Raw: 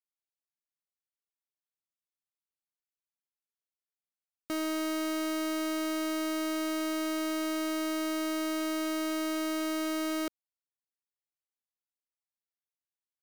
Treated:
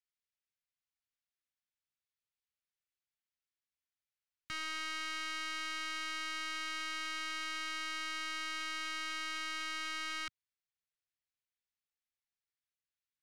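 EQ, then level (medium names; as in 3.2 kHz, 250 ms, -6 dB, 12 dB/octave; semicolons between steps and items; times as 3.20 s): Chebyshev band-stop 120–1700 Hz, order 2; distance through air 89 m; +3.0 dB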